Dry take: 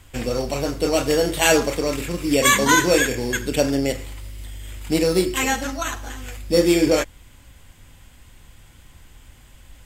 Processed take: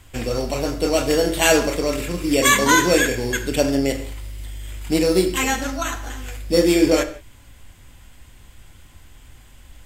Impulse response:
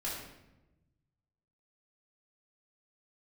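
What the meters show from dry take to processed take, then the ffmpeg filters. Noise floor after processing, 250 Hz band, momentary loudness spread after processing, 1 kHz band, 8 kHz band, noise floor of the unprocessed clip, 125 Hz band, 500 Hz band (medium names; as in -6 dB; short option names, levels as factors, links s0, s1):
-47 dBFS, +1.5 dB, 18 LU, +0.5 dB, +0.5 dB, -49 dBFS, +0.5 dB, +0.5 dB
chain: -filter_complex "[0:a]asplit=2[s0][s1];[1:a]atrim=start_sample=2205,afade=t=out:st=0.23:d=0.01,atrim=end_sample=10584[s2];[s1][s2]afir=irnorm=-1:irlink=0,volume=0.299[s3];[s0][s3]amix=inputs=2:normalize=0,volume=0.891"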